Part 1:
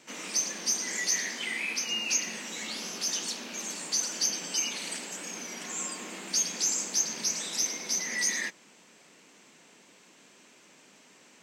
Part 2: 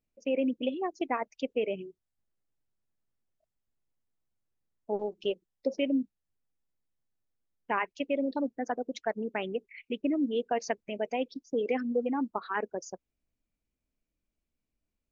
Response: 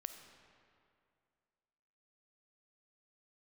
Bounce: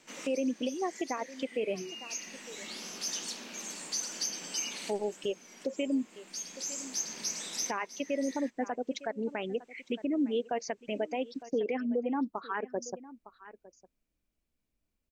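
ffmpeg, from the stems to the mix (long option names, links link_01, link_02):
-filter_complex "[0:a]volume=-4.5dB[link_01];[1:a]volume=2dB,asplit=3[link_02][link_03][link_04];[link_03]volume=-21dB[link_05];[link_04]apad=whole_len=503942[link_06];[link_01][link_06]sidechaincompress=threshold=-34dB:ratio=6:attack=16:release=1390[link_07];[link_05]aecho=0:1:907:1[link_08];[link_07][link_02][link_08]amix=inputs=3:normalize=0,alimiter=limit=-22.5dB:level=0:latency=1:release=207"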